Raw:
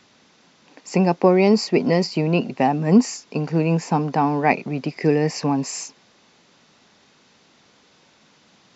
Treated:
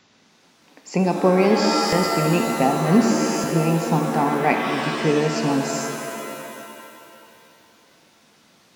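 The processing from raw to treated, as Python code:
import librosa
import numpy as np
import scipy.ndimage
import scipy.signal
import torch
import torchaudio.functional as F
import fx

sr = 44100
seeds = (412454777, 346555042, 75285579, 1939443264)

y = fx.buffer_glitch(x, sr, at_s=(1.6, 3.11), block=1024, repeats=13)
y = fx.rev_shimmer(y, sr, seeds[0], rt60_s=2.5, semitones=7, shimmer_db=-2, drr_db=4.5)
y = y * 10.0 ** (-2.5 / 20.0)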